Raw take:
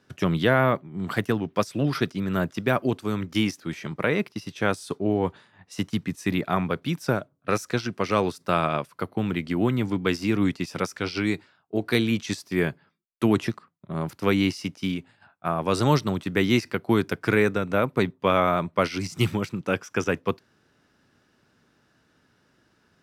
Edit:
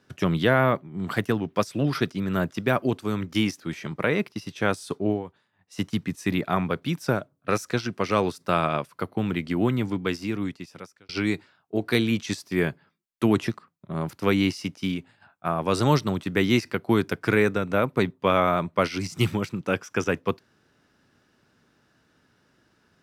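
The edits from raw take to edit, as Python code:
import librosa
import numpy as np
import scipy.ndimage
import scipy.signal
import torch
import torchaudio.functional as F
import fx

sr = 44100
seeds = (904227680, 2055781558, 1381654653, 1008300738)

y = fx.edit(x, sr, fx.fade_down_up(start_s=5.1, length_s=0.71, db=-14.0, fade_s=0.14),
    fx.fade_out_span(start_s=9.7, length_s=1.39), tone=tone)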